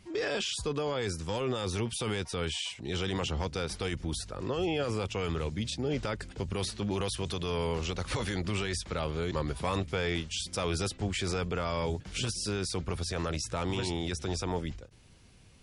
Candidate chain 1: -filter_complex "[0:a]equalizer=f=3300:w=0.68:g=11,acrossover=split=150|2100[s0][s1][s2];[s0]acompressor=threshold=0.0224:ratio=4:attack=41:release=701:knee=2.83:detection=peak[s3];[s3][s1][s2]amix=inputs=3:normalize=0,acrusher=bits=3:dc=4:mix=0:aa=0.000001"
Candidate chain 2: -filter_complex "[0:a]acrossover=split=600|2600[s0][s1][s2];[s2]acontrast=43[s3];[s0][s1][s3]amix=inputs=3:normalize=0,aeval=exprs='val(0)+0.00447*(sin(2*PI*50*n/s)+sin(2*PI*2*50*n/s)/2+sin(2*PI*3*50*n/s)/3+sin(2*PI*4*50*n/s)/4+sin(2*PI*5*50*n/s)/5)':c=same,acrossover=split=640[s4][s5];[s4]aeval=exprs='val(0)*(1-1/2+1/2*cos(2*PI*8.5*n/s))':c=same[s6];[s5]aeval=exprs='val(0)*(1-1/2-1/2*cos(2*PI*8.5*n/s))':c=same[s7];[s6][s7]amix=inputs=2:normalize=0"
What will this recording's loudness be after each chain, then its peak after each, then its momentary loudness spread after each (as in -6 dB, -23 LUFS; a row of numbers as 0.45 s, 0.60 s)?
-32.0 LUFS, -35.5 LUFS; -12.0 dBFS, -19.0 dBFS; 5 LU, 5 LU